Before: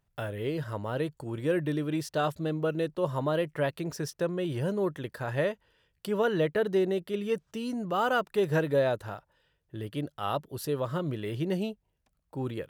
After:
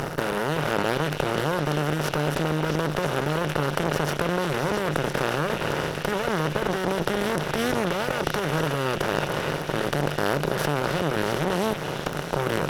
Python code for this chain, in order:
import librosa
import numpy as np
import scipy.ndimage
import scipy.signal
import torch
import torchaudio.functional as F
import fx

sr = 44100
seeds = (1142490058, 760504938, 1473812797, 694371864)

p1 = fx.bin_compress(x, sr, power=0.2)
p2 = fx.peak_eq(p1, sr, hz=150.0, db=8.5, octaves=0.46)
p3 = fx.over_compress(p2, sr, threshold_db=-23.0, ratio=-0.5)
p4 = p2 + (p3 * 10.0 ** (-1.5 / 20.0))
p5 = fx.cheby_harmonics(p4, sr, harmonics=(7, 8), levels_db=(-21, -22), full_scale_db=0.0)
p6 = fx.echo_stepped(p5, sr, ms=333, hz=2900.0, octaves=0.7, feedback_pct=70, wet_db=-2.0)
y = p6 * 10.0 ** (-7.0 / 20.0)